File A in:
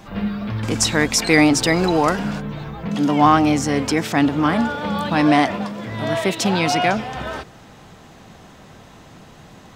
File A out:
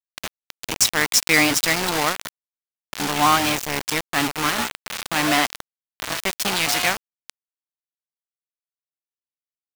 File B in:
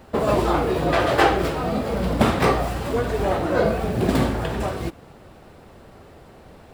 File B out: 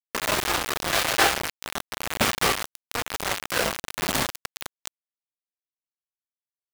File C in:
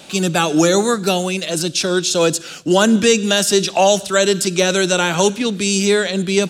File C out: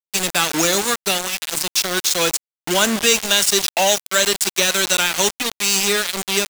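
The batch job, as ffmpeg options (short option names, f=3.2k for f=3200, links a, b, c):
-af "aeval=exprs='val(0)*gte(abs(val(0)),0.158)':c=same,tiltshelf=f=970:g=-6,volume=-3dB"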